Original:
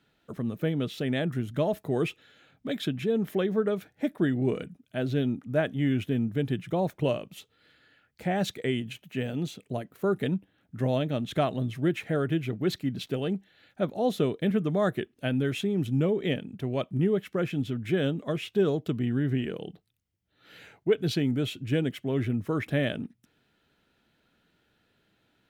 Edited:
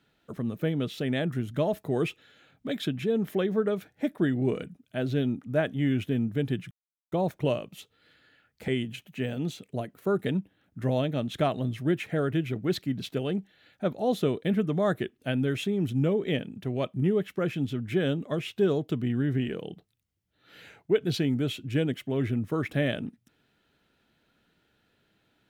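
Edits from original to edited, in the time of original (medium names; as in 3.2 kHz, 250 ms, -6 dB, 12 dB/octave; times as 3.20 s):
6.71 s: insert silence 0.41 s
8.27–8.65 s: delete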